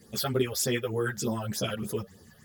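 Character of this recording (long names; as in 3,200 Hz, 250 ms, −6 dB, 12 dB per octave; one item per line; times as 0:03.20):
phaser sweep stages 8, 3.3 Hz, lowest notch 270–2,700 Hz
a quantiser's noise floor 12 bits, dither triangular
a shimmering, thickened sound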